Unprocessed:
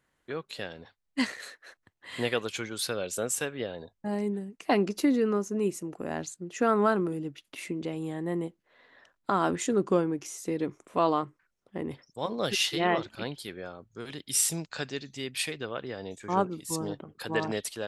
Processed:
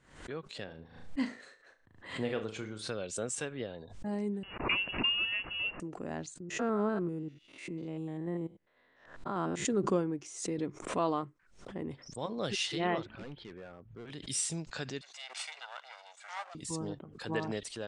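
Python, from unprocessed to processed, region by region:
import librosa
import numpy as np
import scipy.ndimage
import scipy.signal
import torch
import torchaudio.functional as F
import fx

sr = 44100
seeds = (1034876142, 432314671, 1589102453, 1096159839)

y = fx.chain(x, sr, fx.high_shelf(hz=2000.0, db=-9.5),
    fx.room_flutter(wall_m=6.4, rt60_s=0.28), at=(0.64, 2.9))
y = fx.chain(y, sr, fx.crossing_spikes(level_db=-21.5),
    fx.brickwall_highpass(low_hz=200.0),
    fx.freq_invert(carrier_hz=3100), at=(4.43, 5.8))
y = fx.chain(y, sr, fx.spec_steps(hold_ms=100),
    fx.high_shelf(hz=4200.0, db=-7.0), at=(6.4, 9.65))
y = fx.chain(y, sr, fx.lowpass(hz=2900.0, slope=24),
    fx.clip_hard(threshold_db=-36.0), at=(13.06, 14.1))
y = fx.chain(y, sr, fx.lower_of_two(delay_ms=1.4),
    fx.highpass(hz=840.0, slope=24), at=(15.01, 16.55))
y = scipy.signal.sosfilt(scipy.signal.butter(12, 9500.0, 'lowpass', fs=sr, output='sos'), y)
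y = fx.low_shelf(y, sr, hz=260.0, db=5.5)
y = fx.pre_swell(y, sr, db_per_s=96.0)
y = F.gain(torch.from_numpy(y), -7.0).numpy()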